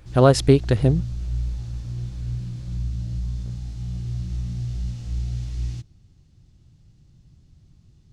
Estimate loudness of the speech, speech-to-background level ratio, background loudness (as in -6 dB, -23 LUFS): -18.5 LUFS, 12.0 dB, -30.5 LUFS